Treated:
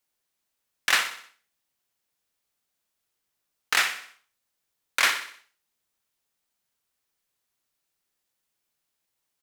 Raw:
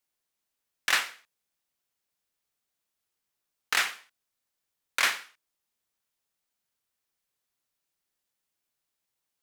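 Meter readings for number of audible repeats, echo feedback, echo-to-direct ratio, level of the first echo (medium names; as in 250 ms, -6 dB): 4, 49%, -10.5 dB, -11.5 dB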